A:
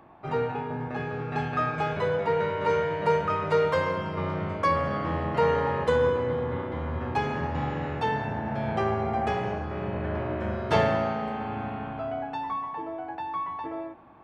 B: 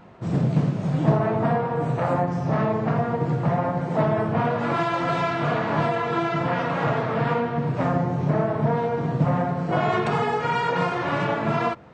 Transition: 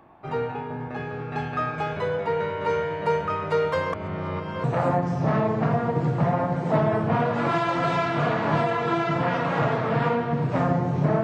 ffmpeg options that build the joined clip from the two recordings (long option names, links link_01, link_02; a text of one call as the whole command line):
ffmpeg -i cue0.wav -i cue1.wav -filter_complex "[0:a]apad=whole_dur=11.23,atrim=end=11.23,asplit=2[link_01][link_02];[link_01]atrim=end=3.932[link_03];[link_02]atrim=start=3.928:end=4.642,asetpts=PTS-STARTPTS,areverse[link_04];[1:a]atrim=start=1.888:end=8.48[link_05];[link_03][link_04]acrossfade=duration=0.004:curve1=hsin:curve2=hsin[link_06];[link_06][link_05]acrossfade=duration=0.004:curve1=hsin:curve2=hsin" out.wav